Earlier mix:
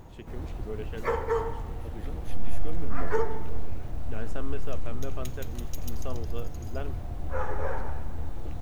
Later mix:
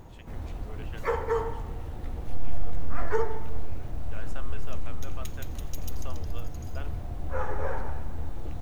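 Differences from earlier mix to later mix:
first voice: add high-pass filter 800 Hz 12 dB per octave
second voice −10.5 dB

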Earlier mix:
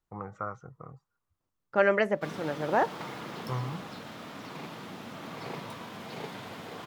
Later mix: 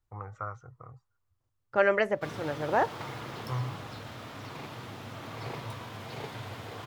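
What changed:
first voice: add low-shelf EQ 500 Hz −8 dB
master: add low shelf with overshoot 140 Hz +6.5 dB, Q 3

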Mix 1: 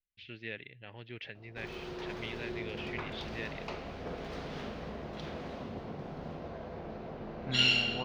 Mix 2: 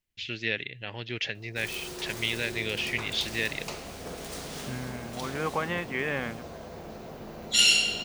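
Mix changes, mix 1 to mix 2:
first voice +9.0 dB
second voice: entry −2.80 s
master: remove high-frequency loss of the air 280 metres

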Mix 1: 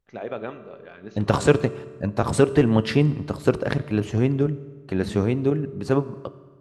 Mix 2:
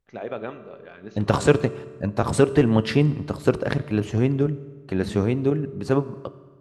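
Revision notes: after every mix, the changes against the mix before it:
nothing changed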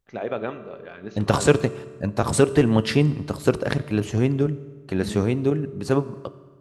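first voice +3.5 dB
second voice: add high-shelf EQ 5,200 Hz +8.5 dB

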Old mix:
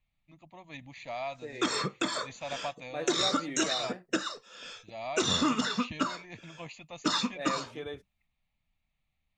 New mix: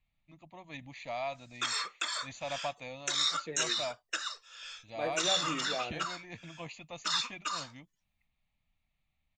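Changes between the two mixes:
second voice: entry +2.05 s
background: add high-pass filter 1,300 Hz 12 dB per octave

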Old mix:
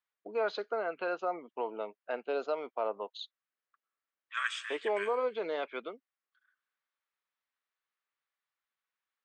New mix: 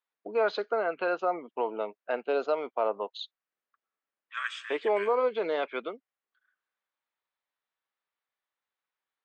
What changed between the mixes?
first voice +5.5 dB
master: add high-frequency loss of the air 57 metres

